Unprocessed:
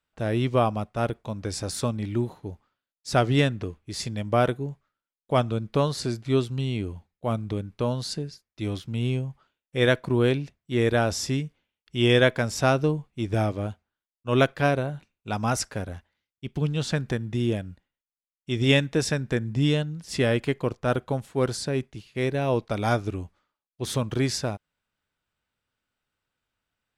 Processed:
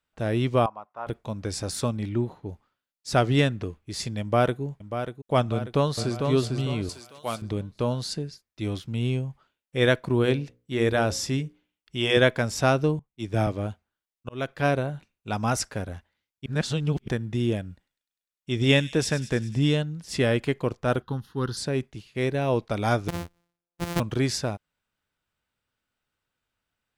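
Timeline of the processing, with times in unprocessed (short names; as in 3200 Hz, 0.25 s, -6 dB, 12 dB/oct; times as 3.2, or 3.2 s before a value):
0.66–1.07 band-pass 990 Hz, Q 3.2
2.09–2.49 LPF 3100 Hz 6 dB/oct
4.21–4.62 echo throw 0.59 s, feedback 55%, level -9 dB
5.52–6.28 echo throw 0.45 s, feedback 35%, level -5 dB
6.89–7.42 tilt +4 dB/oct
10.22–12.17 notches 60/120/180/240/300/360/420/480/540 Hz
12.99–13.47 three-band expander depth 100%
14.29–14.71 fade in
16.46–17.08 reverse
17.61–19.76 thin delay 0.1 s, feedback 69%, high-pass 4000 Hz, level -11 dB
21.02–21.57 fixed phaser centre 2300 Hz, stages 6
23.08–24 sample sorter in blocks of 256 samples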